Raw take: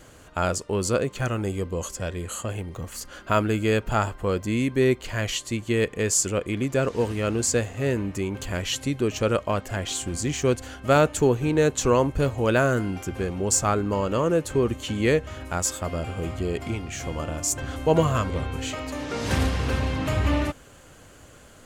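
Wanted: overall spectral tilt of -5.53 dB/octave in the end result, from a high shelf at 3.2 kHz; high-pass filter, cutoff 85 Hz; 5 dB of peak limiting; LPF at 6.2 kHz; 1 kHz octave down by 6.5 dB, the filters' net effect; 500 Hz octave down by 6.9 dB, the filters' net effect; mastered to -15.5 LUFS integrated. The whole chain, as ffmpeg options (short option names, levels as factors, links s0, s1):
-af "highpass=85,lowpass=6200,equalizer=f=500:t=o:g=-7,equalizer=f=1000:t=o:g=-6,highshelf=f=3200:g=-6,volume=5.62,alimiter=limit=0.708:level=0:latency=1"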